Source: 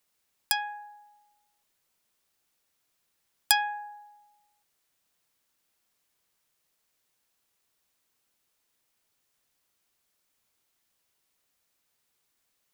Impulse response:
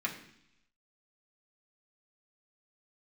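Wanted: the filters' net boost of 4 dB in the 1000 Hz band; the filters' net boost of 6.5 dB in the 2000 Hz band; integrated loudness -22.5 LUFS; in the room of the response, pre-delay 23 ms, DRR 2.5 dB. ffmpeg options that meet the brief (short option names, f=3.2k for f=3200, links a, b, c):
-filter_complex "[0:a]equalizer=f=1k:t=o:g=4,equalizer=f=2k:t=o:g=7,asplit=2[a][b];[1:a]atrim=start_sample=2205,adelay=23[c];[b][c]afir=irnorm=-1:irlink=0,volume=-7.5dB[d];[a][d]amix=inputs=2:normalize=0"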